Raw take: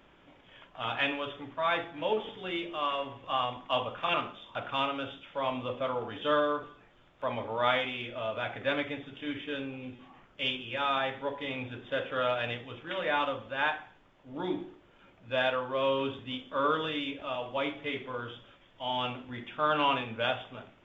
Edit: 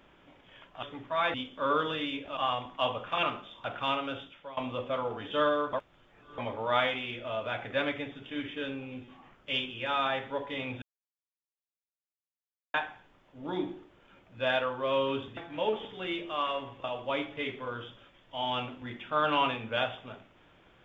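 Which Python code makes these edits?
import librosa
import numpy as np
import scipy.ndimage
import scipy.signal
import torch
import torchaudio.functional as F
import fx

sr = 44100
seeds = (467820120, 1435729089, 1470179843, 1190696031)

y = fx.edit(x, sr, fx.cut(start_s=0.83, length_s=0.47),
    fx.swap(start_s=1.81, length_s=1.47, other_s=16.28, other_length_s=1.03),
    fx.fade_out_to(start_s=5.11, length_s=0.37, floor_db=-19.5),
    fx.reverse_span(start_s=6.64, length_s=0.65),
    fx.silence(start_s=11.73, length_s=1.92), tone=tone)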